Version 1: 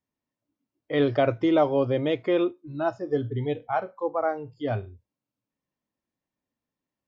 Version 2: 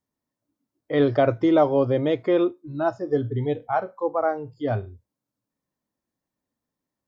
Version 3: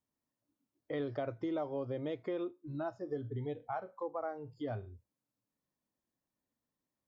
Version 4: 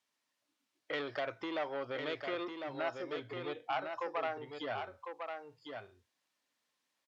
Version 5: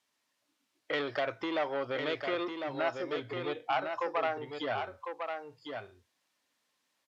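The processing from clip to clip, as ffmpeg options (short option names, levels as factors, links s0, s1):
-af "equalizer=f=2700:w=1.9:g=-7,volume=1.41"
-af "acompressor=threshold=0.0224:ratio=3,volume=0.531"
-af "asoftclip=type=tanh:threshold=0.0224,bandpass=f=2900:t=q:w=0.75:csg=0,aecho=1:1:1052:0.501,volume=5.01"
-af "volume=1.78" -ar 32000 -c:a libvorbis -b:a 96k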